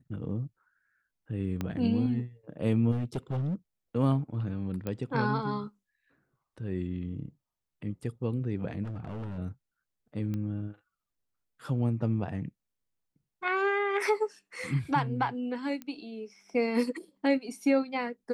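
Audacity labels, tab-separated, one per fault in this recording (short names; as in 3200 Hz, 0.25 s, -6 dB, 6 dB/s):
1.610000	1.610000	pop -19 dBFS
2.910000	3.550000	clipped -27.5 dBFS
4.870000	4.870000	pop -21 dBFS
8.840000	9.390000	clipped -33.5 dBFS
10.340000	10.340000	pop -24 dBFS
15.820000	15.820000	pop -26 dBFS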